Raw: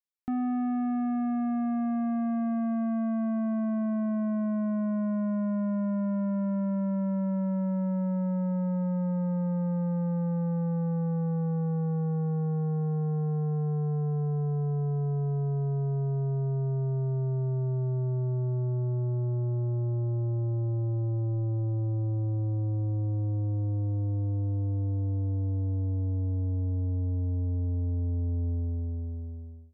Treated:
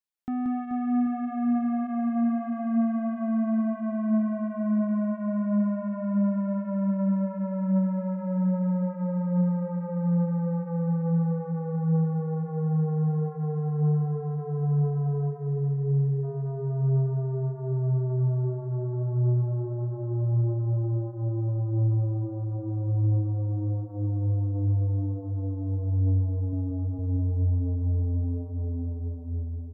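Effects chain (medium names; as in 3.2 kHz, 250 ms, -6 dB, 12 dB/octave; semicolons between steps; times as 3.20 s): 15.30–16.24 s: time-frequency box 460–1600 Hz -27 dB; 26.52–26.99 s: comb 7.4 ms, depth 67%; reverse bouncing-ball echo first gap 180 ms, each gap 1.4×, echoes 5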